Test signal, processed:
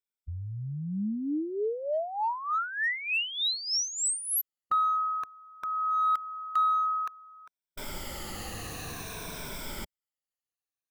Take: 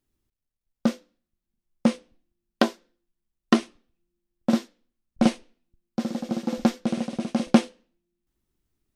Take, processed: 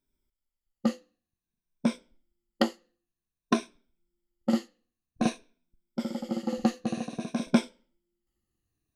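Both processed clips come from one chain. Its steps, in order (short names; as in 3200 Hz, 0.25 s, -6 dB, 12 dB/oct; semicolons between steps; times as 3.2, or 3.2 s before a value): moving spectral ripple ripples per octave 1.6, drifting -0.53 Hz, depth 13 dB; in parallel at -12 dB: overloaded stage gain 19.5 dB; on the sum: gain -7.5 dB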